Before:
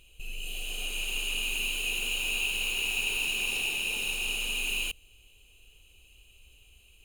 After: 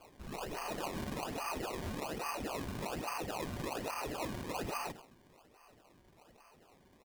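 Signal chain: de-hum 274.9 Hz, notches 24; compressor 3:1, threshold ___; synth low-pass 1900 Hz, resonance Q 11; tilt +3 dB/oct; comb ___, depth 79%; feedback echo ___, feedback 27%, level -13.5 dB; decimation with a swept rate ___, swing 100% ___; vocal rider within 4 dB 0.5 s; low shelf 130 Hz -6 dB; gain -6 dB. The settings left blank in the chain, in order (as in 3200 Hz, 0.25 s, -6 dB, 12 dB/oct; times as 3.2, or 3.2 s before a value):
-36 dBFS, 6.4 ms, 93 ms, 23×, 1.2 Hz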